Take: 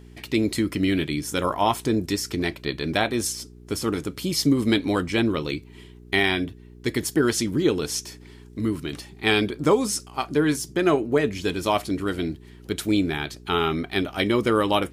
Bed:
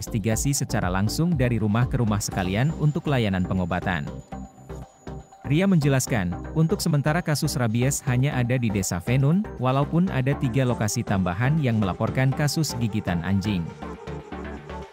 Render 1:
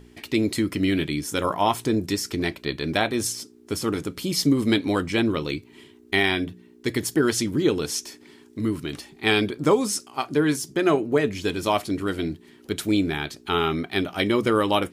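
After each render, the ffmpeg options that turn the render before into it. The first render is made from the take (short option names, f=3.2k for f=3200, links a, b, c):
-af "bandreject=f=60:t=h:w=4,bandreject=f=120:t=h:w=4,bandreject=f=180:t=h:w=4"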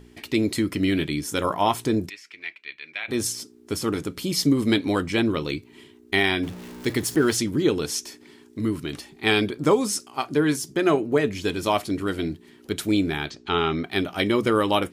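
-filter_complex "[0:a]asplit=3[a][b][c];[a]afade=t=out:st=2.08:d=0.02[d];[b]bandpass=f=2.3k:t=q:w=3.7,afade=t=in:st=2.08:d=0.02,afade=t=out:st=3.08:d=0.02[e];[c]afade=t=in:st=3.08:d=0.02[f];[d][e][f]amix=inputs=3:normalize=0,asettb=1/sr,asplit=3[g][h][i];[g]atrim=end=6.434[j];[h]atrim=start=6.43:end=7.37,asetpts=PTS-STARTPTS,afade=t=in:d=0.004:c=qsin,afade=t=out:st=0.936:d=0.004:c=qsin,aeval=exprs='val(0)+0.5*0.0168*sgn(val(0))':c=same[k];[i]atrim=start=7.366[l];[j][k]acrossfade=d=0.004:c1=hsin:c2=qsin[m];[m][l]acrossfade=d=0.004:c1=qsin:c2=hsin,asettb=1/sr,asplit=3[n][o][p];[n]atrim=end=13.304[q];[o]atrim=start=13.3:end=13.84,asetpts=PTS-STARTPTS,afade=t=in:d=0.004:c=qsin,afade=t=out:st=0.536:d=0.004:c=qsin,lowpass=f=6.5k:w=0.5412,lowpass=f=6.5k:w=1.3066[r];[p]atrim=start=13.836[s];[q][r]acrossfade=d=0.004:c1=hsin:c2=qsin[t];[t][s]acrossfade=d=0.004:c1=qsin:c2=hsin"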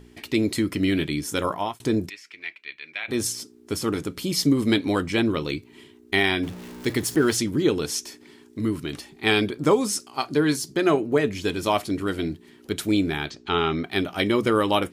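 -filter_complex "[0:a]asettb=1/sr,asplit=3[a][b][c];[a]atrim=end=10.064[d];[b]atrim=start=10.06:end=10.86,asetpts=PTS-STARTPTS,afade=t=in:d=0.004:c=qsin,afade=t=out:st=0.796:d=0.004:c=qsin,equalizer=f=4.3k:t=o:w=0.26:g=8.5[e];[c]atrim=start=10.856[f];[d][e]acrossfade=d=0.004:c1=hsin:c2=qsin[g];[g][f]acrossfade=d=0.004:c1=qsin:c2=hsin,asplit=2[h][i];[h]atrim=end=1.8,asetpts=PTS-STARTPTS,afade=t=out:st=1.32:d=0.48:c=qsin[j];[i]atrim=start=1.8,asetpts=PTS-STARTPTS,afade=t=in:d=0.004:c=hsin[k];[j][k]concat=n=2:v=0:a=1"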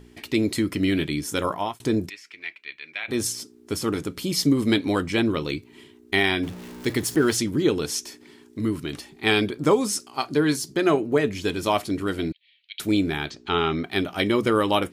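-filter_complex "[0:a]asettb=1/sr,asplit=3[a][b][c];[a]atrim=end=12.324[d];[b]atrim=start=12.32:end=12.8,asetpts=PTS-STARTPTS,afade=t=in:d=0.004:c=qsin,afade=t=out:st=0.476:d=0.004:c=qsin,asuperpass=centerf=3000:order=8:qfactor=1.5[e];[c]atrim=start=12.796[f];[d][e]acrossfade=d=0.004:c1=hsin:c2=qsin[g];[g][f]acrossfade=d=0.004:c1=qsin:c2=hsin"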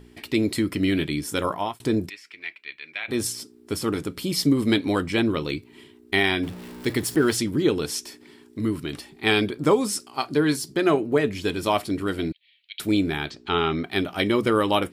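-af "equalizer=f=6.4k:w=5.6:g=-6"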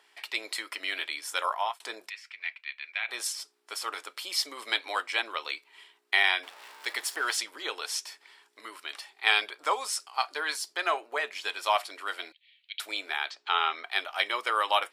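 -af "highpass=f=730:w=0.5412,highpass=f=730:w=1.3066,highshelf=f=10k:g=-10.5"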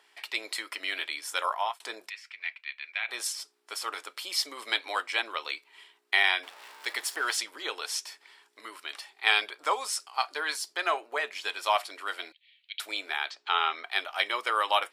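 -af anull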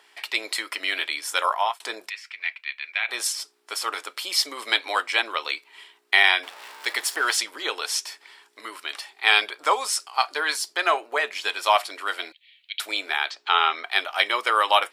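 -af "volume=6.5dB,alimiter=limit=-1dB:level=0:latency=1"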